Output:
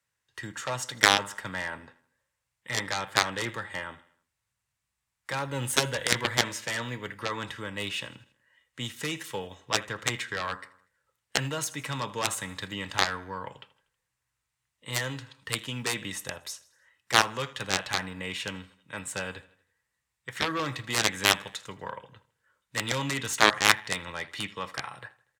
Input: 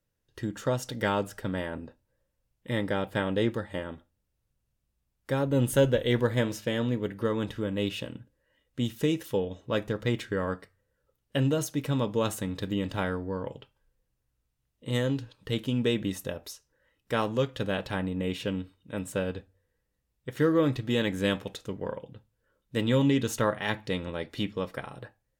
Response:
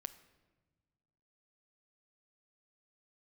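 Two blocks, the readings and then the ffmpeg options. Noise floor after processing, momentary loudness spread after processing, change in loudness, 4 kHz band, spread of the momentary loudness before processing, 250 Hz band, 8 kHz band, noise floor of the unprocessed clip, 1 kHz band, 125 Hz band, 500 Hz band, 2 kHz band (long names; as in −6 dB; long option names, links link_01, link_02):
−83 dBFS, 17 LU, +0.5 dB, +8.0 dB, 14 LU, −9.5 dB, +11.0 dB, −79 dBFS, +6.0 dB, −7.5 dB, −7.0 dB, +8.0 dB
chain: -filter_complex "[0:a]equalizer=frequency=250:width_type=o:width=1:gain=-6,equalizer=frequency=500:width_type=o:width=1:gain=-4,equalizer=frequency=1000:width_type=o:width=1:gain=9,equalizer=frequency=2000:width_type=o:width=1:gain=11,equalizer=frequency=4000:width_type=o:width=1:gain=4,equalizer=frequency=8000:width_type=o:width=1:gain=11,acrossover=split=120|460|4300[link_01][link_02][link_03][link_04];[link_01]acrusher=samples=13:mix=1:aa=0.000001:lfo=1:lforange=13:lforate=0.89[link_05];[link_05][link_02][link_03][link_04]amix=inputs=4:normalize=0,aeval=exprs='0.708*(cos(1*acos(clip(val(0)/0.708,-1,1)))-cos(1*PI/2))+0.0355*(cos(7*acos(clip(val(0)/0.708,-1,1)))-cos(7*PI/2))':channel_layout=same,aecho=1:1:80|160|240|320:0.0944|0.0472|0.0236|0.0118,aeval=exprs='0.75*(cos(1*acos(clip(val(0)/0.75,-1,1)))-cos(1*PI/2))+0.188*(cos(7*acos(clip(val(0)/0.75,-1,1)))-cos(7*PI/2))':channel_layout=same,highpass=82,volume=1.5dB"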